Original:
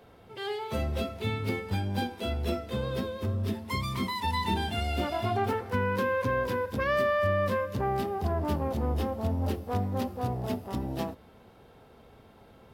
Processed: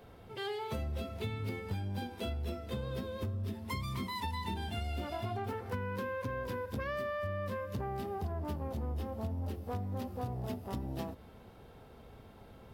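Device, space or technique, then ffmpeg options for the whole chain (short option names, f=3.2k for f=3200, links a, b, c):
ASMR close-microphone chain: -af "lowshelf=f=120:g=7,acompressor=threshold=-33dB:ratio=6,highshelf=f=12k:g=3.5,volume=-1.5dB"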